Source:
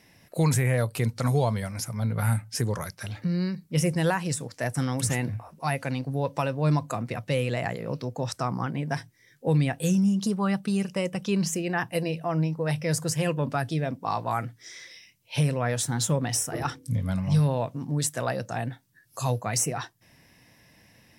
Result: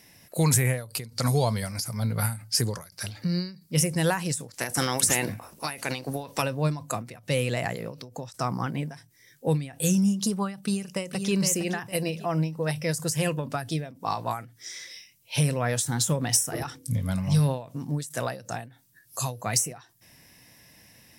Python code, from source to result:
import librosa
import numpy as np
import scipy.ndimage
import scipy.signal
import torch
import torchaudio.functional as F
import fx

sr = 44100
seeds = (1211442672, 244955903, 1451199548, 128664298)

y = fx.peak_eq(x, sr, hz=4700.0, db=10.5, octaves=0.24, at=(0.89, 3.74))
y = fx.spec_clip(y, sr, under_db=15, at=(4.54, 6.41), fade=0.02)
y = fx.echo_throw(y, sr, start_s=10.62, length_s=0.71, ms=460, feedback_pct=30, wet_db=-8.0)
y = fx.high_shelf(y, sr, hz=5100.0, db=11.0)
y = fx.end_taper(y, sr, db_per_s=130.0)